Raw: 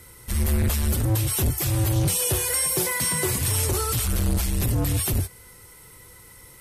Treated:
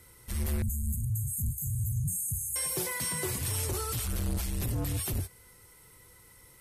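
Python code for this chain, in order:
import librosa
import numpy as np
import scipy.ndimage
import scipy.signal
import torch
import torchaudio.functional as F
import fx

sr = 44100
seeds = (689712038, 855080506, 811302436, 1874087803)

y = fx.brickwall_bandstop(x, sr, low_hz=240.0, high_hz=6300.0, at=(0.62, 2.56))
y = F.gain(torch.from_numpy(y), -8.5).numpy()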